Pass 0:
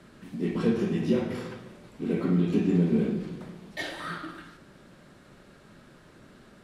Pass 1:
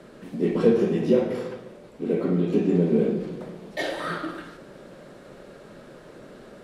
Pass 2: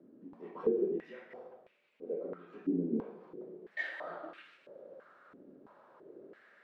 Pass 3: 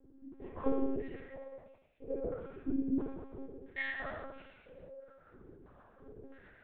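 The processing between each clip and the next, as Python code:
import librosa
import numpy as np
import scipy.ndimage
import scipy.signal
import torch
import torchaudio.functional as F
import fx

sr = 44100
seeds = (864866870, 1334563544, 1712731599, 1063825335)

y1 = fx.peak_eq(x, sr, hz=84.0, db=-11.5, octaves=0.37)
y1 = fx.rider(y1, sr, range_db=4, speed_s=2.0)
y1 = fx.peak_eq(y1, sr, hz=510.0, db=10.5, octaves=1.1)
y2 = fx.rider(y1, sr, range_db=4, speed_s=2.0)
y2 = fx.filter_held_bandpass(y2, sr, hz=3.0, low_hz=280.0, high_hz=2500.0)
y2 = F.gain(torch.from_numpy(y2), -5.5).numpy()
y3 = fx.rotary(y2, sr, hz=1.2)
y3 = fx.rev_gated(y3, sr, seeds[0], gate_ms=360, shape='falling', drr_db=2.0)
y3 = fx.lpc_monotone(y3, sr, seeds[1], pitch_hz=270.0, order=10)
y3 = F.gain(torch.from_numpy(y3), 1.0).numpy()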